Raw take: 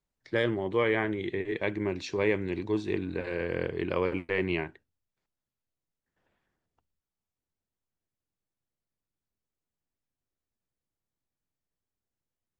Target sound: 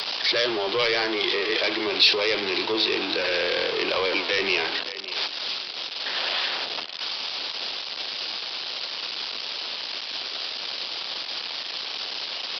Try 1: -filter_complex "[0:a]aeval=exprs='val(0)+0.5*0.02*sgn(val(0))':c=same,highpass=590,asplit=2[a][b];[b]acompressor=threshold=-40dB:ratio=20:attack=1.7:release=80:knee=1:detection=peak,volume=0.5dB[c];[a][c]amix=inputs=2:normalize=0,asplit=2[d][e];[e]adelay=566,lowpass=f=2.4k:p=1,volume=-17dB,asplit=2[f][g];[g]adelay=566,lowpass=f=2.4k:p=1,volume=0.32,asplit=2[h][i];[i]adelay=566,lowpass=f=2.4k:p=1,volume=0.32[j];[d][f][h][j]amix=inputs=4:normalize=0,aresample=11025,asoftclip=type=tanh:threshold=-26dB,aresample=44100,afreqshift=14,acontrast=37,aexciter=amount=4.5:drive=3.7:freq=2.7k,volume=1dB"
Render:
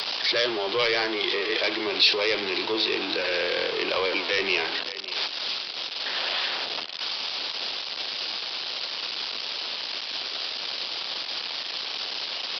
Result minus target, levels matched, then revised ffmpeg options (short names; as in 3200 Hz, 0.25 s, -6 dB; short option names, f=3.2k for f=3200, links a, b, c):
compressor: peak gain reduction +7 dB
-filter_complex "[0:a]aeval=exprs='val(0)+0.5*0.02*sgn(val(0))':c=same,highpass=590,asplit=2[a][b];[b]acompressor=threshold=-32.5dB:ratio=20:attack=1.7:release=80:knee=1:detection=peak,volume=0.5dB[c];[a][c]amix=inputs=2:normalize=0,asplit=2[d][e];[e]adelay=566,lowpass=f=2.4k:p=1,volume=-17dB,asplit=2[f][g];[g]adelay=566,lowpass=f=2.4k:p=1,volume=0.32,asplit=2[h][i];[i]adelay=566,lowpass=f=2.4k:p=1,volume=0.32[j];[d][f][h][j]amix=inputs=4:normalize=0,aresample=11025,asoftclip=type=tanh:threshold=-26dB,aresample=44100,afreqshift=14,acontrast=37,aexciter=amount=4.5:drive=3.7:freq=2.7k,volume=1dB"